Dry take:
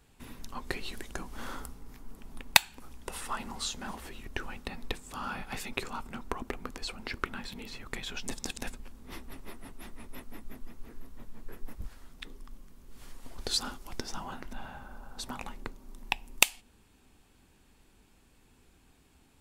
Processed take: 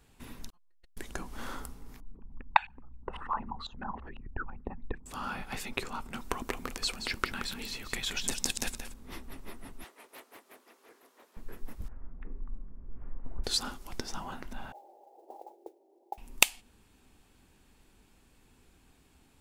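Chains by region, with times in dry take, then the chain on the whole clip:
0.50–0.97 s: expander -34 dBFS + inharmonic resonator 170 Hz, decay 0.58 s, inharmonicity 0.002 + transformer saturation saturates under 170 Hz
2.00–5.06 s: resonances exaggerated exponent 2 + LFO low-pass saw up 6 Hz 800–2600 Hz
6.13–8.94 s: treble shelf 2.8 kHz +9 dB + delay 176 ms -9 dB
9.84–11.37 s: high-pass 390 Hz 24 dB/octave + loudspeaker Doppler distortion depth 0.25 ms
11.88–13.44 s: Gaussian low-pass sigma 5.7 samples + bass shelf 140 Hz +9 dB + de-hum 139.8 Hz, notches 20
14.72–16.18 s: Chebyshev band-pass 330–830 Hz, order 4 + modulation noise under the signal 25 dB
whole clip: none

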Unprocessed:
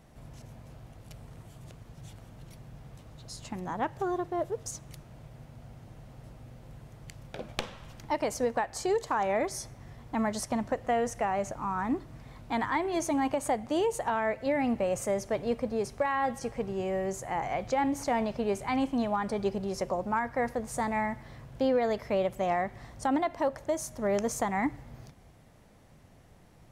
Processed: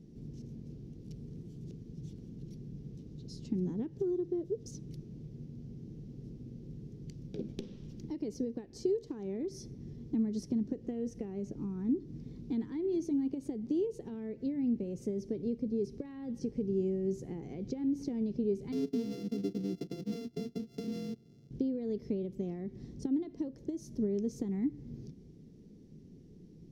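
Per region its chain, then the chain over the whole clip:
18.72–21.51 s: sorted samples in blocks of 64 samples + gate -37 dBFS, range -11 dB + high-pass 96 Hz
whole clip: dynamic bell 6.9 kHz, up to -4 dB, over -56 dBFS, Q 2.6; compression 4:1, threshold -35 dBFS; FFT filter 110 Hz 0 dB, 170 Hz +11 dB, 420 Hz +9 dB, 610 Hz -16 dB, 1.2 kHz -23 dB, 5.7 kHz -2 dB, 8.3 kHz -15 dB; trim -2.5 dB

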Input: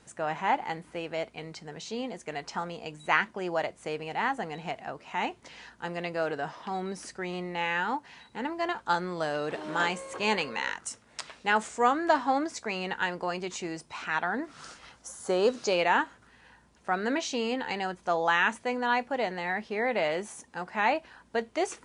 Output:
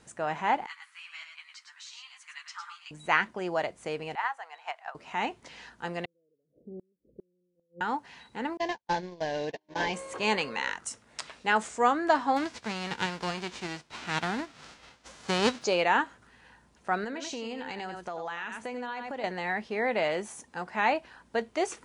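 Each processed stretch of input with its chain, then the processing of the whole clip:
0.66–2.91 s: elliptic high-pass 1.1 kHz, stop band 50 dB + delay 106 ms -6.5 dB + three-phase chorus
4.15–4.95 s: high-pass 870 Hz 24 dB/octave + treble shelf 2.2 kHz -11 dB + transient shaper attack +9 dB, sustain 0 dB
6.05–7.81 s: steep low-pass 530 Hz 72 dB/octave + bass shelf 410 Hz -5.5 dB + inverted gate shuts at -35 dBFS, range -35 dB
8.57–9.94 s: CVSD coder 32 kbps + gate -34 dBFS, range -40 dB + Butterworth band-stop 1.3 kHz, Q 2.4
12.36–15.61 s: formants flattened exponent 0.3 + distance through air 120 m
17.04–19.24 s: delay 89 ms -9 dB + compression, threshold -33 dBFS
whole clip: none

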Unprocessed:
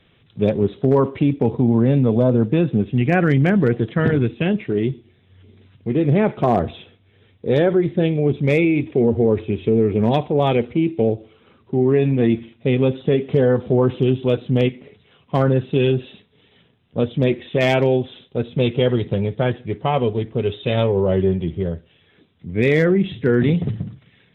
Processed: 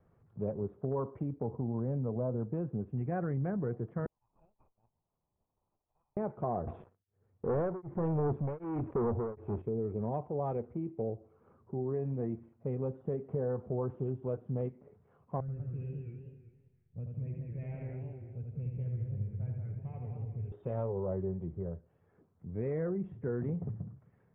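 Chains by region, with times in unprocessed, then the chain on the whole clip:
4.06–6.17 s: compression 5:1, threshold -33 dBFS + rippled Chebyshev high-pass 2.4 kHz, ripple 9 dB + sliding maximum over 9 samples
6.67–9.62 s: waveshaping leveller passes 3 + tremolo of two beating tones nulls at 1.3 Hz
15.40–20.52 s: FFT filter 110 Hz 0 dB, 310 Hz -19 dB, 1.2 kHz -28 dB, 2.5 kHz -2 dB, 4.2 kHz -29 dB + feedback delay 80 ms, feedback 52%, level -4 dB + modulated delay 194 ms, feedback 31%, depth 170 cents, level -5.5 dB
whole clip: low-pass 1.2 kHz 24 dB/octave; compression 1.5:1, threshold -35 dBFS; peaking EQ 280 Hz -6 dB 0.99 oct; trim -7.5 dB

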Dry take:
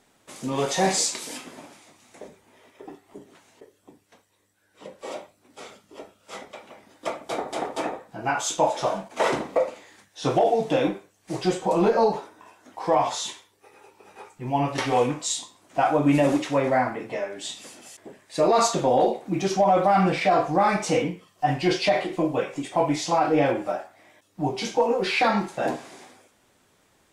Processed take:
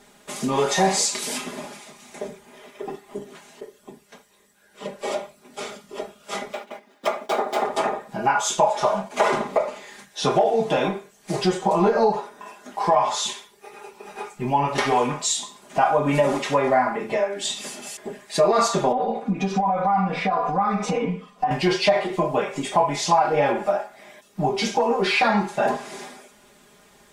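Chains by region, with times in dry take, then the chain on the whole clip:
6.53–7.64 s: median filter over 5 samples + high-pass 210 Hz 24 dB/octave + gate -49 dBFS, range -10 dB
18.92–21.51 s: compression, threshold -26 dBFS + low-pass 1.6 kHz 6 dB/octave + comb 4.1 ms, depth 99%
whole clip: dynamic bell 1 kHz, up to +6 dB, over -35 dBFS, Q 1; comb 4.9 ms, depth 83%; compression 2:1, threshold -31 dBFS; trim +7 dB

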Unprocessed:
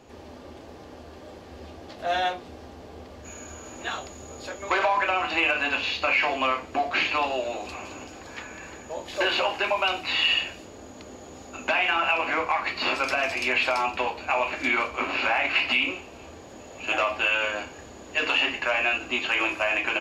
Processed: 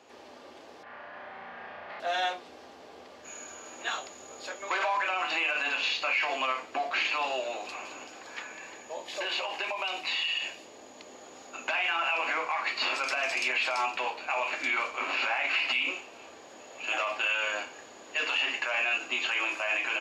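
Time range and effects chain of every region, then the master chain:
0.83–2.00 s: resonant low-pass 1.9 kHz, resonance Q 2.3 + peaking EQ 350 Hz -12 dB 0.59 oct + flutter echo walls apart 5.8 m, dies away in 1.3 s
8.52–11.15 s: peaking EQ 1.4 kHz -7 dB 0.3 oct + compression 10:1, threshold -26 dBFS
whole clip: dynamic bell 7.3 kHz, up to +5 dB, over -45 dBFS, Q 1.2; peak limiter -18 dBFS; frequency weighting A; trim -2 dB

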